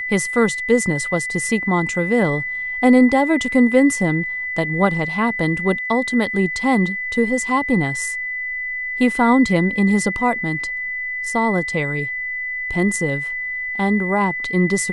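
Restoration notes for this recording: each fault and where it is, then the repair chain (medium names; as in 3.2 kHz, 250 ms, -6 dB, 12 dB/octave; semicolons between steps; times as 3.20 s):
whine 2 kHz -23 dBFS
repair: band-stop 2 kHz, Q 30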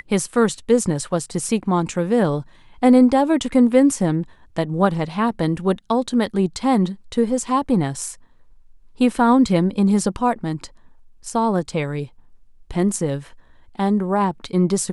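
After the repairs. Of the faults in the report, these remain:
nothing left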